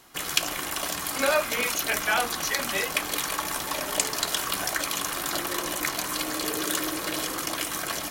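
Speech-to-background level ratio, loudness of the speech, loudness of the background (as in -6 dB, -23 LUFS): 0.0 dB, -27.5 LUFS, -27.5 LUFS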